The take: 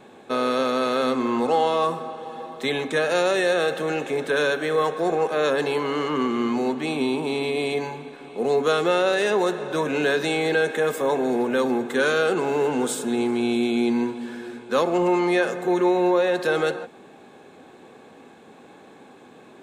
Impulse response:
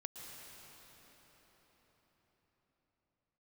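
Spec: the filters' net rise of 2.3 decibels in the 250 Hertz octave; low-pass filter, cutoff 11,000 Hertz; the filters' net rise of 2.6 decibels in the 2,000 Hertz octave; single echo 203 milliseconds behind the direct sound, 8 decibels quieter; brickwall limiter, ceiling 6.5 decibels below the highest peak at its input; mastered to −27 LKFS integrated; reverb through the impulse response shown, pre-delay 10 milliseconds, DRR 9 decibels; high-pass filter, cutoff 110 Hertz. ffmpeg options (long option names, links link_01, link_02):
-filter_complex "[0:a]highpass=110,lowpass=11000,equalizer=frequency=250:width_type=o:gain=3,equalizer=frequency=2000:width_type=o:gain=3.5,alimiter=limit=-14.5dB:level=0:latency=1,aecho=1:1:203:0.398,asplit=2[link_01][link_02];[1:a]atrim=start_sample=2205,adelay=10[link_03];[link_02][link_03]afir=irnorm=-1:irlink=0,volume=-6.5dB[link_04];[link_01][link_04]amix=inputs=2:normalize=0,volume=-4dB"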